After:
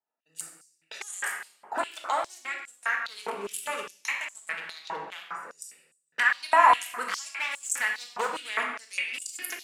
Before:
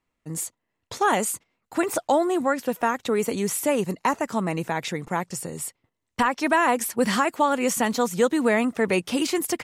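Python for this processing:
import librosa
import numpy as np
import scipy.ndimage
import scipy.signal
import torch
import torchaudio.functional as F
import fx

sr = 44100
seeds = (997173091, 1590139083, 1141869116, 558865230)

y = fx.wiener(x, sr, points=41)
y = fx.recorder_agc(y, sr, target_db=-13.0, rise_db_per_s=31.0, max_gain_db=30)
y = fx.overload_stage(y, sr, gain_db=16.0, at=(7.31, 8.3))
y = fx.room_shoebox(y, sr, seeds[0], volume_m3=680.0, walls='mixed', distance_m=1.5)
y = fx.filter_held_highpass(y, sr, hz=4.9, low_hz=940.0, high_hz=7600.0)
y = F.gain(torch.from_numpy(y), -4.5).numpy()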